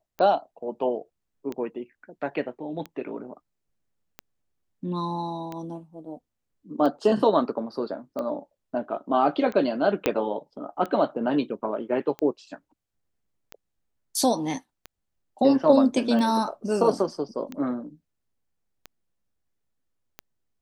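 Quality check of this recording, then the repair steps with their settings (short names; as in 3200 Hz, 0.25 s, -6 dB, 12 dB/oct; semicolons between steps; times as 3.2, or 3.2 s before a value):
tick 45 rpm -20 dBFS
10.06 pop -7 dBFS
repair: de-click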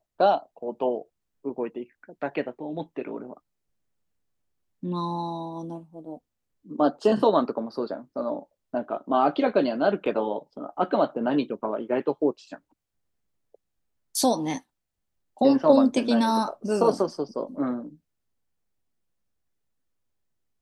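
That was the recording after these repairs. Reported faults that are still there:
10.06 pop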